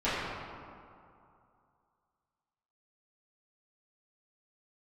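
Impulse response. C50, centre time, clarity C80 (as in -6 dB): -3.0 dB, 0.147 s, -1.0 dB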